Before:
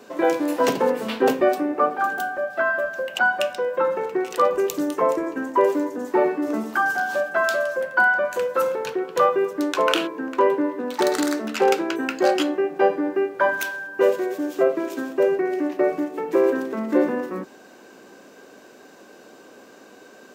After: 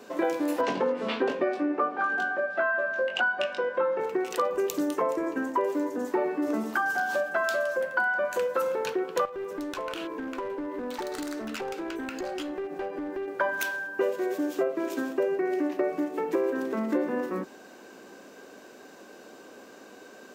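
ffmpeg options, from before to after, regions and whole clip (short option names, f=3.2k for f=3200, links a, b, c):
-filter_complex "[0:a]asettb=1/sr,asplit=3[a][b][c];[a]atrim=end=0.614[d];[b]atrim=start=0.61:end=4,asetpts=PTS-STARTPTS,afade=t=in:d=0.004:c=qsin,afade=t=out:st=3.386:d=0.004:c=qsin,highpass=130,lowpass=4.2k,asplit=2[e][f];[f]adelay=21,volume=-4.5dB[g];[e][g]amix=inputs=2:normalize=0,atrim=end_sample=149499[h];[c]atrim=start=3.996[i];[d][h]acrossfade=d=0.004:c1=hsin:c2=qsin[j];[j][i]acrossfade=d=0.004:c1=qsin:c2=hsin,asettb=1/sr,asplit=3[k][l][m];[k]atrim=end=9.254[n];[l]atrim=start=9.25:end=13.28,asetpts=PTS-STARTPTS,afade=t=in:d=0.004:c=qsin,afade=t=out:st=4.026:d=0.004:c=qsin,acompressor=threshold=-28dB:ratio=8:attack=3.2:release=140:knee=1:detection=peak,aeval=exprs='clip(val(0),-1,0.0376)':c=same[o];[m]atrim=start=13.276[p];[n][o]acrossfade=d=0.004:c1=hsin:c2=qsin[q];[q][p]acrossfade=d=0.004:c1=qsin:c2=hsin,equalizer=f=140:t=o:w=0.27:g=-4.5,acompressor=threshold=-22dB:ratio=5,volume=-1.5dB"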